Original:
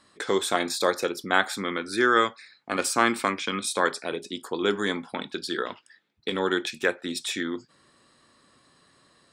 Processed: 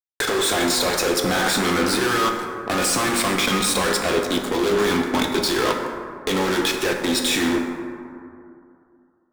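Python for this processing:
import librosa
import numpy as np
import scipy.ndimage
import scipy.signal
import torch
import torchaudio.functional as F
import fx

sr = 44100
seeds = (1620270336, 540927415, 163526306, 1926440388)

y = fx.fuzz(x, sr, gain_db=38.0, gate_db=-41.0)
y = fx.level_steps(y, sr, step_db=11)
y = fx.rev_plate(y, sr, seeds[0], rt60_s=2.5, hf_ratio=0.35, predelay_ms=0, drr_db=2.5)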